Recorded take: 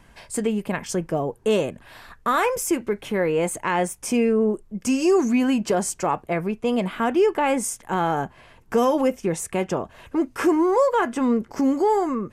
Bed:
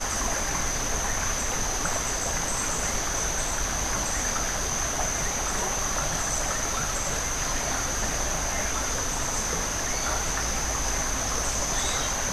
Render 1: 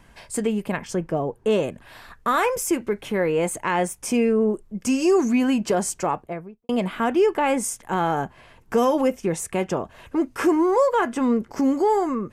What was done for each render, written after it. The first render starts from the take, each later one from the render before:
0:00.77–0:01.63: high-shelf EQ 4,400 Hz −8 dB
0:05.97–0:06.69: fade out and dull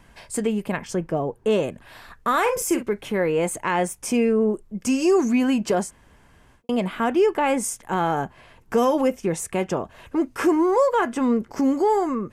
0:02.41–0:02.83: double-tracking delay 43 ms −8.5 dB
0:05.86–0:06.58: fill with room tone, crossfade 0.10 s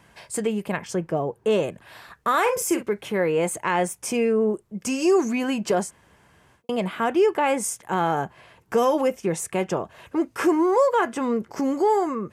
high-pass filter 95 Hz 12 dB per octave
parametric band 250 Hz −6.5 dB 0.32 octaves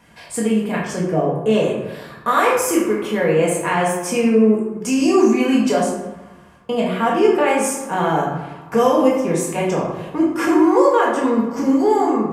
feedback echo with a band-pass in the loop 79 ms, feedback 84%, band-pass 1,100 Hz, level −17 dB
rectangular room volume 310 cubic metres, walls mixed, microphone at 1.8 metres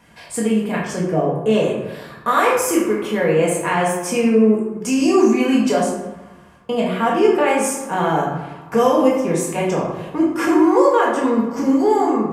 no processing that can be heard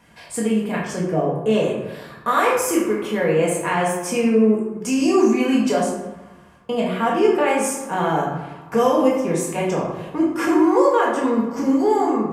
level −2 dB

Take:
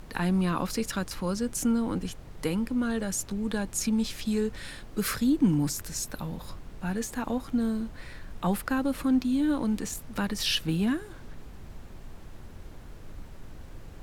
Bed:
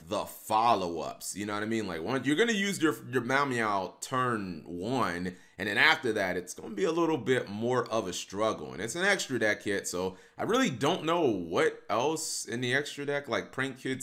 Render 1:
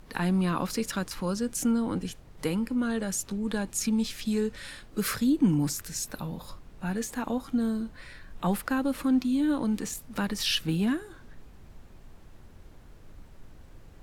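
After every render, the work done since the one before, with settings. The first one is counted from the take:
noise reduction from a noise print 6 dB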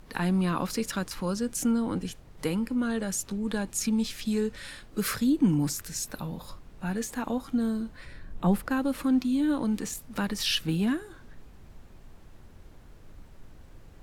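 0:08.05–0:08.71: tilt shelving filter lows +5 dB, about 700 Hz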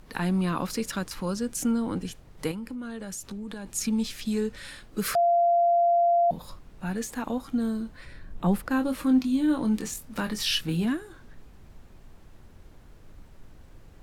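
0:02.51–0:03.66: downward compressor, threshold −33 dBFS
0:05.15–0:06.31: beep over 690 Hz −18 dBFS
0:08.69–0:10.85: double-tracking delay 23 ms −7 dB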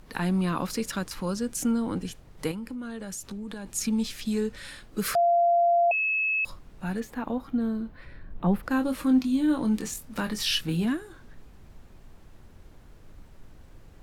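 0:05.91–0:06.45: beep over 2,590 Hz −23 dBFS
0:07.00–0:08.63: parametric band 8,100 Hz −15 dB 1.7 octaves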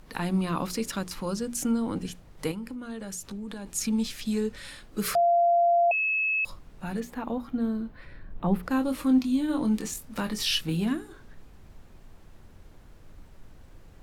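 mains-hum notches 60/120/180/240/300/360/420 Hz
dynamic equaliser 1,600 Hz, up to −4 dB, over −50 dBFS, Q 4.2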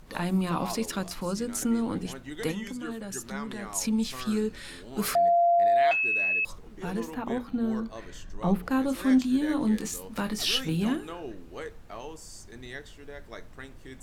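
mix in bed −12.5 dB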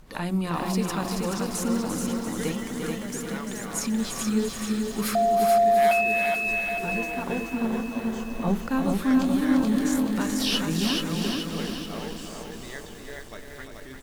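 repeating echo 345 ms, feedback 53%, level −7 dB
feedback echo at a low word length 430 ms, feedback 55%, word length 8 bits, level −3 dB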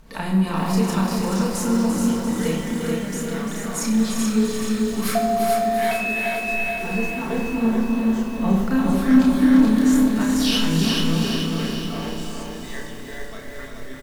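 double-tracking delay 31 ms −3.5 dB
rectangular room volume 2,000 cubic metres, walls mixed, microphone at 1.6 metres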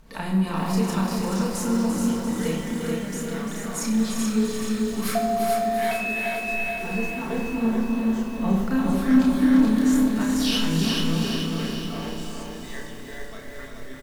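level −3 dB

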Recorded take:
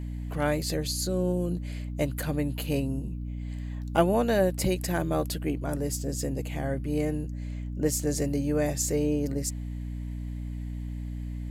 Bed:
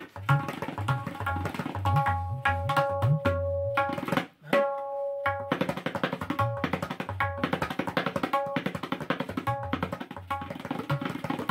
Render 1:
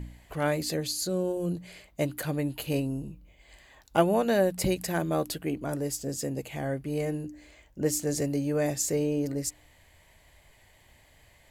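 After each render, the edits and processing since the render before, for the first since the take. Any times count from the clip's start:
hum removal 60 Hz, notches 5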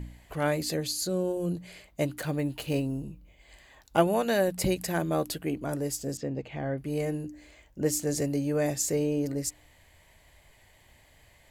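0:02.12–0:03.03: running median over 3 samples
0:04.07–0:04.48: tilt shelving filter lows −3 dB
0:06.17–0:06.78: high-frequency loss of the air 210 metres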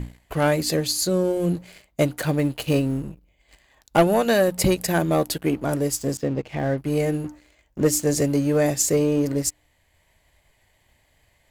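leveller curve on the samples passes 2
transient designer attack +2 dB, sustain −2 dB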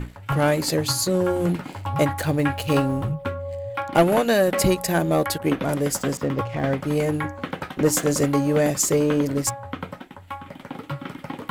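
mix in bed −2 dB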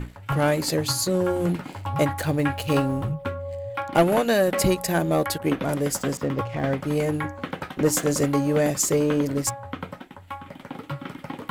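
level −1.5 dB

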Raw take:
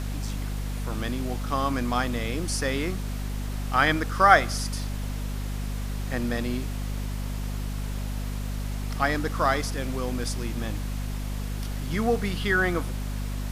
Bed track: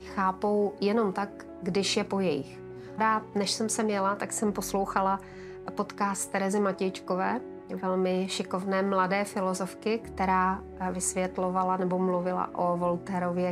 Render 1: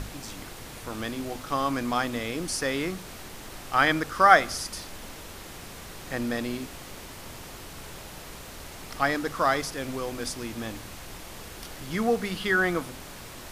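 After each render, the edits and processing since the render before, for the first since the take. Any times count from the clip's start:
mains-hum notches 50/100/150/200/250 Hz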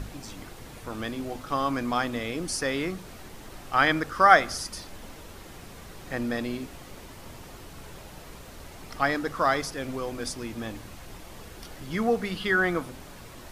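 broadband denoise 6 dB, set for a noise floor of −43 dBFS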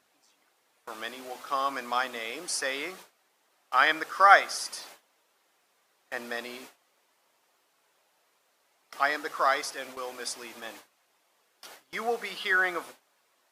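high-pass filter 600 Hz 12 dB per octave
noise gate with hold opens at −31 dBFS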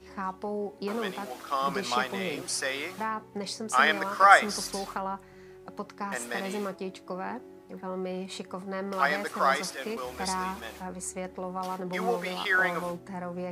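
mix in bed track −7 dB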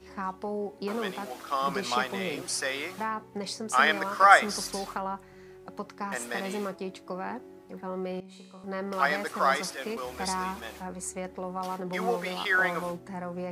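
0:08.20–0:08.64: tuned comb filter 63 Hz, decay 1.3 s, mix 90%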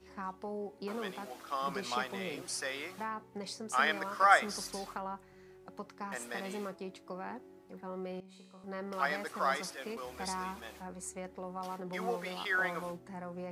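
level −7 dB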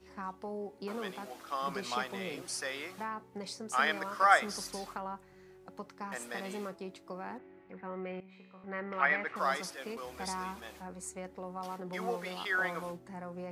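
0:07.38–0:09.36: low-pass with resonance 2,200 Hz, resonance Q 2.8

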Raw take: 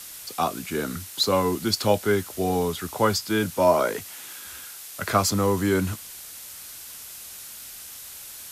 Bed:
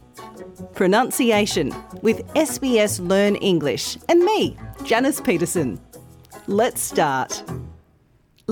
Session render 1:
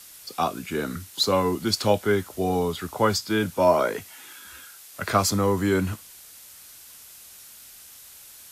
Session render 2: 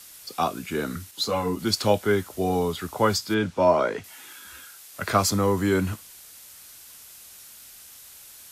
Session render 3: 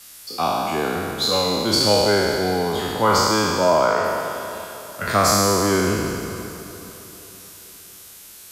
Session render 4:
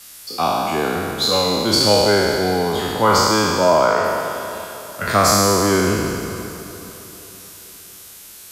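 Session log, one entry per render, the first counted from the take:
noise reduction from a noise print 6 dB
0:01.11–0:01.59: string-ensemble chorus; 0:03.34–0:04.04: high-frequency loss of the air 87 metres
peak hold with a decay on every bin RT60 2.38 s; feedback delay with all-pass diffusion 451 ms, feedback 46%, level −15.5 dB
level +2.5 dB

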